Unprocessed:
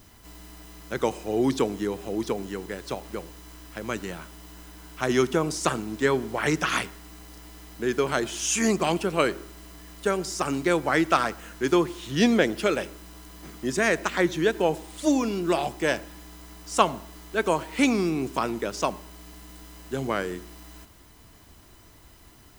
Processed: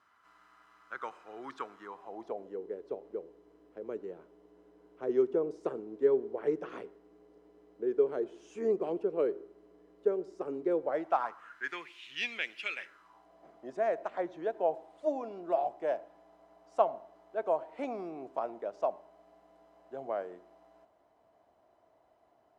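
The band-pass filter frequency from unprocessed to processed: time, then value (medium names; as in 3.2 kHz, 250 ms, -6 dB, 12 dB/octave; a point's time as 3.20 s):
band-pass filter, Q 4.4
1.77 s 1.3 kHz
2.62 s 440 Hz
10.76 s 440 Hz
11.91 s 2.5 kHz
12.73 s 2.5 kHz
13.28 s 660 Hz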